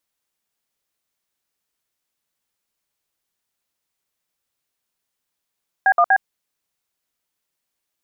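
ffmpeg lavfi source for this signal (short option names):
-f lavfi -i "aevalsrc='0.211*clip(min(mod(t,0.121),0.062-mod(t,0.121))/0.002,0,1)*(eq(floor(t/0.121),0)*(sin(2*PI*770*mod(t,0.121))+sin(2*PI*1633*mod(t,0.121)))+eq(floor(t/0.121),1)*(sin(2*PI*697*mod(t,0.121))+sin(2*PI*1209*mod(t,0.121)))+eq(floor(t/0.121),2)*(sin(2*PI*770*mod(t,0.121))+sin(2*PI*1633*mod(t,0.121))))':d=0.363:s=44100"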